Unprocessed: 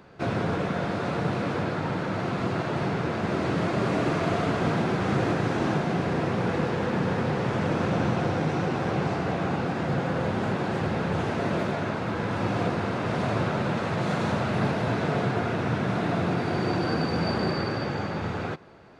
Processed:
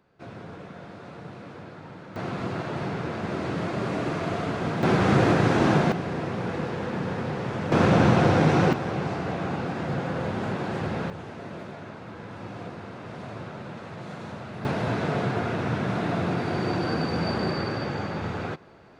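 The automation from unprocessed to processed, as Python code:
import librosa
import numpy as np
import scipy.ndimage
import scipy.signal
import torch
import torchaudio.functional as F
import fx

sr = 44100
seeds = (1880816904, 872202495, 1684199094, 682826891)

y = fx.gain(x, sr, db=fx.steps((0.0, -14.0), (2.16, -3.0), (4.83, 5.0), (5.92, -3.5), (7.72, 6.5), (8.73, -2.0), (11.1, -11.5), (14.65, -0.5)))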